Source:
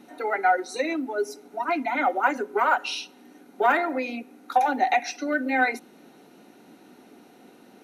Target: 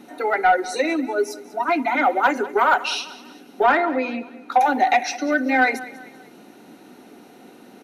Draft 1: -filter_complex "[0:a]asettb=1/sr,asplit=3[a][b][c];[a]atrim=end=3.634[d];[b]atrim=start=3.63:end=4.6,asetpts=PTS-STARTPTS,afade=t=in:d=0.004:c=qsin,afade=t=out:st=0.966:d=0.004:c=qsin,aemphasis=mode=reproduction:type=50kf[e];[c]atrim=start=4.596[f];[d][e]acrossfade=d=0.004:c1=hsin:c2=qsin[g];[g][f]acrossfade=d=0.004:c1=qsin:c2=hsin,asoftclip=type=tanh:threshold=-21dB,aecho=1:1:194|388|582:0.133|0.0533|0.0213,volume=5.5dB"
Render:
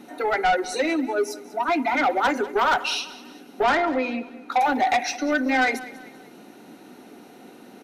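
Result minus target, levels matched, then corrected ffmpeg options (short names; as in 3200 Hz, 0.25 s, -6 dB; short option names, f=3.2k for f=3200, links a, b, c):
soft clip: distortion +11 dB
-filter_complex "[0:a]asettb=1/sr,asplit=3[a][b][c];[a]atrim=end=3.634[d];[b]atrim=start=3.63:end=4.6,asetpts=PTS-STARTPTS,afade=t=in:d=0.004:c=qsin,afade=t=out:st=0.966:d=0.004:c=qsin,aemphasis=mode=reproduction:type=50kf[e];[c]atrim=start=4.596[f];[d][e]acrossfade=d=0.004:c1=hsin:c2=qsin[g];[g][f]acrossfade=d=0.004:c1=qsin:c2=hsin,asoftclip=type=tanh:threshold=-12dB,aecho=1:1:194|388|582:0.133|0.0533|0.0213,volume=5.5dB"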